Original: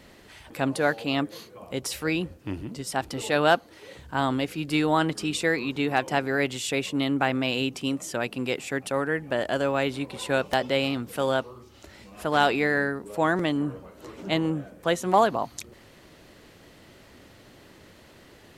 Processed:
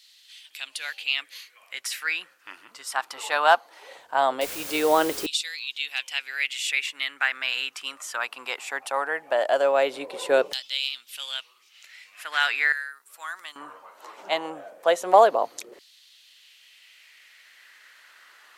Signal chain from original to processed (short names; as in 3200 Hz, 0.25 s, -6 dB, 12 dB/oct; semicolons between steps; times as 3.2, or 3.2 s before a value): LFO high-pass saw down 0.19 Hz 420–4000 Hz; 4.41–5.26 requantised 6-bit, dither triangular; 12.72–13.56 pre-emphasis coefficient 0.9